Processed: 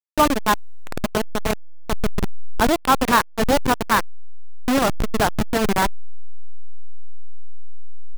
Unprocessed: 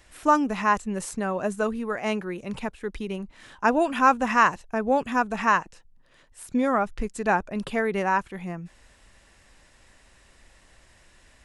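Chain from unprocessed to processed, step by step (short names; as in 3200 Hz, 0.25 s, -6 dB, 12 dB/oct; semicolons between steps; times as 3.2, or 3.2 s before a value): level-crossing sampler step -18 dBFS; soft clip -14.5 dBFS, distortion -17 dB; tempo 1.4×; gain +7 dB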